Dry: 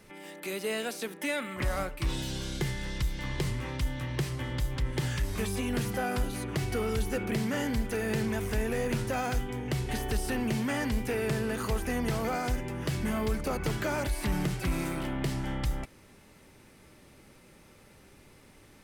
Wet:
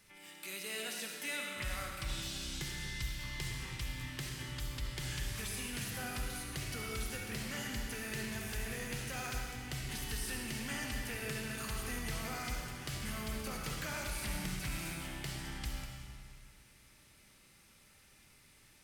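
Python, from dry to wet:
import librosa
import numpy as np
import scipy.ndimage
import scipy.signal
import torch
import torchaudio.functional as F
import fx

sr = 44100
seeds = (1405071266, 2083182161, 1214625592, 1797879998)

y = fx.tone_stack(x, sr, knobs='5-5-5')
y = fx.rev_freeverb(y, sr, rt60_s=2.0, hf_ratio=0.95, predelay_ms=25, drr_db=0.5)
y = y * librosa.db_to_amplitude(3.0)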